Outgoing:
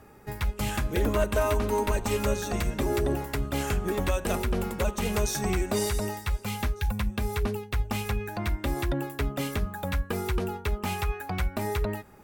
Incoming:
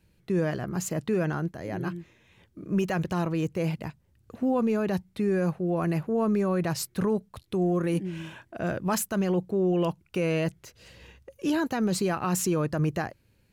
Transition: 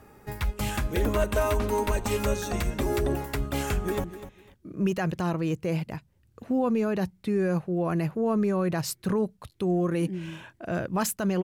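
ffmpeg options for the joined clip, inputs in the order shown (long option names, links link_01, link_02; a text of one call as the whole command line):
ffmpeg -i cue0.wav -i cue1.wav -filter_complex "[0:a]apad=whole_dur=11.43,atrim=end=11.43,atrim=end=4.042[link_01];[1:a]atrim=start=1.958:end=9.35[link_02];[link_01][link_02]acrossfade=duration=0.004:curve1=hsin:curve2=hsin,asplit=2[link_03][link_04];[link_04]afade=type=in:start_time=3.71:duration=0.01,afade=type=out:start_time=4.04:duration=0.01,aecho=0:1:250|500:0.223872|0.0447744[link_05];[link_03][link_05]amix=inputs=2:normalize=0" out.wav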